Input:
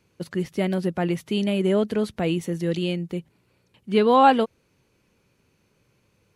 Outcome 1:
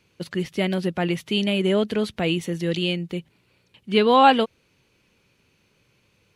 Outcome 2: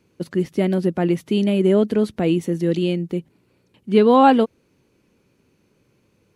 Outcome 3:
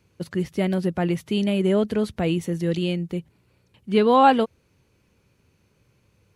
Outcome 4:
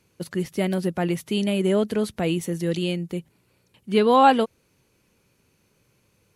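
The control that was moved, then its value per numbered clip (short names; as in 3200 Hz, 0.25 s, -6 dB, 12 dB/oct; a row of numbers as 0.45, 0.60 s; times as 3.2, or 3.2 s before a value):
bell, frequency: 3100, 290, 74, 12000 Hz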